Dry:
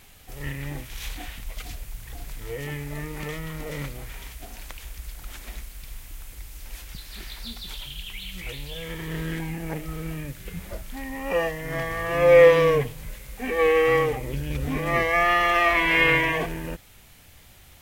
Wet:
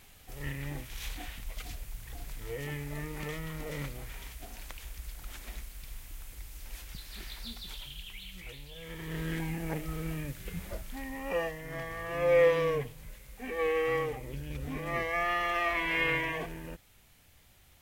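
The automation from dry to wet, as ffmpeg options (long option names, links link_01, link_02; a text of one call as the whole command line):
ffmpeg -i in.wav -af "volume=3.5dB,afade=type=out:start_time=7.33:duration=1.4:silence=0.446684,afade=type=in:start_time=8.73:duration=0.69:silence=0.375837,afade=type=out:start_time=10.61:duration=1.08:silence=0.473151" out.wav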